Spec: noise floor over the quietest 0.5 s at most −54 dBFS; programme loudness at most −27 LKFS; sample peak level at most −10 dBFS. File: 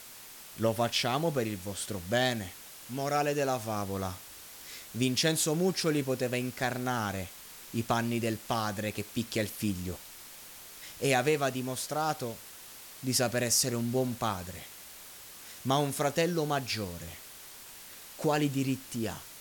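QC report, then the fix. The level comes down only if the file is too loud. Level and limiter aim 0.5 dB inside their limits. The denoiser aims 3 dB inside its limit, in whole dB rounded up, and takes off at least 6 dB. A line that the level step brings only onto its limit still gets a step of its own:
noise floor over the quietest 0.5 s −49 dBFS: out of spec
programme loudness −31.0 LKFS: in spec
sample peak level −13.0 dBFS: in spec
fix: broadband denoise 8 dB, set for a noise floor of −49 dBFS

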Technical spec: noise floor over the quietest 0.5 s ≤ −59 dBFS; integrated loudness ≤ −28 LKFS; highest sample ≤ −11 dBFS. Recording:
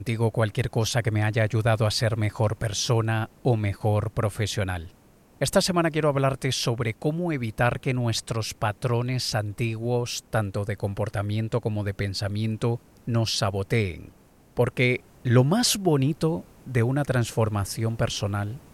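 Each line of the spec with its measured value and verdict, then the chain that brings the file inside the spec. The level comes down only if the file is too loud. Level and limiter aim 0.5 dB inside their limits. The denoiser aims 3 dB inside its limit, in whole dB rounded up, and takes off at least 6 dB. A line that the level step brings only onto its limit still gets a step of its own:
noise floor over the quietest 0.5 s −55 dBFS: out of spec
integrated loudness −25.5 LKFS: out of spec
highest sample −6.0 dBFS: out of spec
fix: broadband denoise 6 dB, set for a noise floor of −55 dBFS
level −3 dB
brickwall limiter −11.5 dBFS

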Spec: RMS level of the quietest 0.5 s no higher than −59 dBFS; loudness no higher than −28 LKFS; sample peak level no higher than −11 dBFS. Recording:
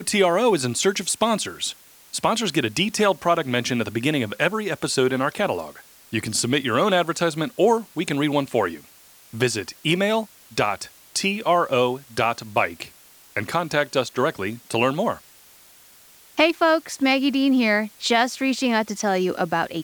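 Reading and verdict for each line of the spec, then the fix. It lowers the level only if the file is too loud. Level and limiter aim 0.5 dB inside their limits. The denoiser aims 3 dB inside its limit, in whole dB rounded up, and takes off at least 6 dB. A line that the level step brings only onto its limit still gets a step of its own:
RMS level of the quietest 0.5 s −51 dBFS: out of spec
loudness −22.0 LKFS: out of spec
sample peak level −4.5 dBFS: out of spec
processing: broadband denoise 6 dB, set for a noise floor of −51 dBFS
level −6.5 dB
brickwall limiter −11.5 dBFS

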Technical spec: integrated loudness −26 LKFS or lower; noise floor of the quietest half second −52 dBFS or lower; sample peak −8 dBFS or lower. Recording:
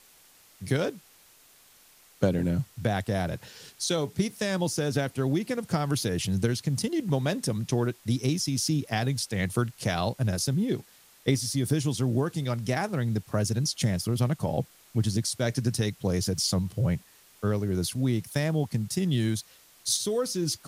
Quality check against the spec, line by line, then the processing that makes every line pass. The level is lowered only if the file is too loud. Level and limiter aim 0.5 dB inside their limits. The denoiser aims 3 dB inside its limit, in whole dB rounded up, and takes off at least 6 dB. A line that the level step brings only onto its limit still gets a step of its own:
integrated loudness −28.5 LKFS: in spec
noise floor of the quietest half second −57 dBFS: in spec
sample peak −10.5 dBFS: in spec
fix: no processing needed

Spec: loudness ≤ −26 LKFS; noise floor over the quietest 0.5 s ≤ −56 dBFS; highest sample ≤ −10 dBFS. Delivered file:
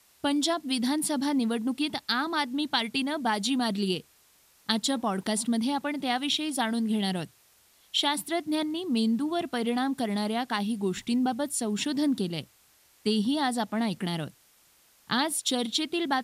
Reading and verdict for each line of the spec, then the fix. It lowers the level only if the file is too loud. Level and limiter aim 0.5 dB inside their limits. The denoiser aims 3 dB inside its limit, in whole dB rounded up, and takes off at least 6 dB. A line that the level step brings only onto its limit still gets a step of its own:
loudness −28.5 LKFS: in spec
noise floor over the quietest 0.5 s −62 dBFS: in spec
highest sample −8.5 dBFS: out of spec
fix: brickwall limiter −10.5 dBFS

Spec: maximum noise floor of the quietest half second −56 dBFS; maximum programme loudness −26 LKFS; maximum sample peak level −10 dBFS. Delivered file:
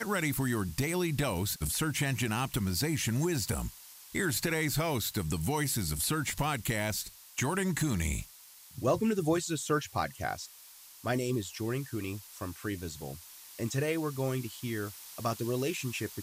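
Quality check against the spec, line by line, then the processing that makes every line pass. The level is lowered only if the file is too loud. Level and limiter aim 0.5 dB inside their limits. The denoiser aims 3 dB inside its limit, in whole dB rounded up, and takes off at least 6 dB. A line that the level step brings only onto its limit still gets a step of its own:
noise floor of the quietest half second −54 dBFS: out of spec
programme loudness −32.5 LKFS: in spec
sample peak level −16.5 dBFS: in spec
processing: broadband denoise 6 dB, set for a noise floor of −54 dBFS

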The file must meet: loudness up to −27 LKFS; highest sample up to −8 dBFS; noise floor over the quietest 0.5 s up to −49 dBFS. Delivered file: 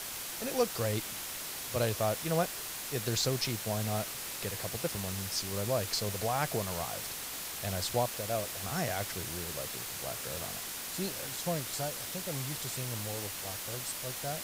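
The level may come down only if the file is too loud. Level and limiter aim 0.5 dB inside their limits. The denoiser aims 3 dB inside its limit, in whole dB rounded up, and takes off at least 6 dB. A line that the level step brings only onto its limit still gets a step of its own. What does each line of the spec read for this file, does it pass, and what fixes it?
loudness −34.0 LKFS: in spec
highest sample −16.0 dBFS: in spec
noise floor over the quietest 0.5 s −40 dBFS: out of spec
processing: broadband denoise 12 dB, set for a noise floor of −40 dBFS

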